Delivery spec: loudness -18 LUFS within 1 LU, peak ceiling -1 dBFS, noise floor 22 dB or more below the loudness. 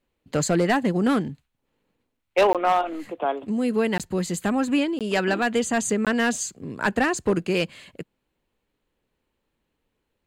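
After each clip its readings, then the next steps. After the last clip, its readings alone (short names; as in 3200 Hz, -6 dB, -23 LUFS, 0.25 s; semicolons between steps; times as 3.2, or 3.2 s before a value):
clipped 0.5%; flat tops at -13.0 dBFS; dropouts 4; longest dropout 17 ms; loudness -23.5 LUFS; peak -13.0 dBFS; loudness target -18.0 LUFS
-> clip repair -13 dBFS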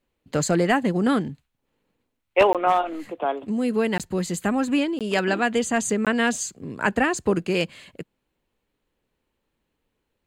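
clipped 0.0%; dropouts 4; longest dropout 17 ms
-> interpolate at 2.53/3.98/4.99/6.05, 17 ms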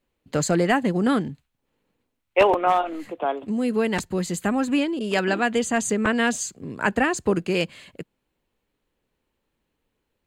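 dropouts 0; loudness -23.5 LUFS; peak -4.0 dBFS; loudness target -18.0 LUFS
-> gain +5.5 dB; limiter -1 dBFS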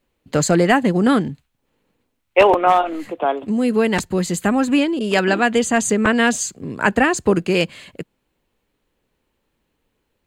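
loudness -18.0 LUFS; peak -1.0 dBFS; noise floor -72 dBFS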